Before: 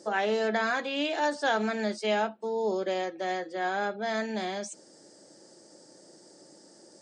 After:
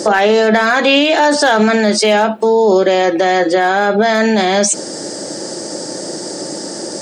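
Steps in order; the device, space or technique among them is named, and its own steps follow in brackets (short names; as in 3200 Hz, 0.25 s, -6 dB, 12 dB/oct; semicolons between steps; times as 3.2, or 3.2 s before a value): loud club master (compressor 2:1, threshold -34 dBFS, peak gain reduction 7 dB; hard clip -24.5 dBFS, distortion -30 dB; maximiser +32.5 dB); gain -2.5 dB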